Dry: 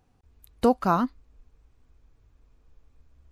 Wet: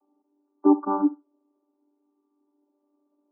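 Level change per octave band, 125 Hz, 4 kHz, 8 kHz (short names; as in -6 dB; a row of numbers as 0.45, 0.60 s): under -15 dB, under -35 dB, n/a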